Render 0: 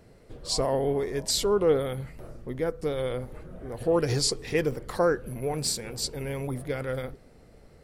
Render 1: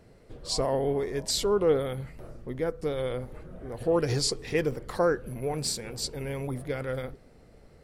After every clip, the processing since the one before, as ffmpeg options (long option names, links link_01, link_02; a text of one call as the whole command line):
ffmpeg -i in.wav -af "highshelf=frequency=9200:gain=-4,volume=-1dB" out.wav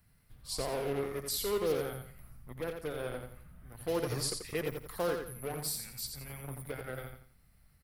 ffmpeg -i in.wav -filter_complex "[0:a]acrossover=split=210|910|3700[link_01][link_02][link_03][link_04];[link_02]acrusher=bits=4:mix=0:aa=0.5[link_05];[link_01][link_05][link_03][link_04]amix=inputs=4:normalize=0,aexciter=amount=7.5:drive=4.6:freq=9900,aecho=1:1:86|172|258|344:0.501|0.16|0.0513|0.0164,volume=-9dB" out.wav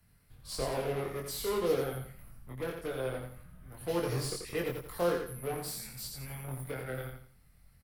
ffmpeg -i in.wav -filter_complex "[0:a]acrossover=split=290|660|2300[link_01][link_02][link_03][link_04];[link_04]asoftclip=type=tanh:threshold=-38.5dB[link_05];[link_01][link_02][link_03][link_05]amix=inputs=4:normalize=0,asplit=2[link_06][link_07];[link_07]adelay=23,volume=-2.5dB[link_08];[link_06][link_08]amix=inputs=2:normalize=0" -ar 48000 -c:a libvorbis -b:a 96k out.ogg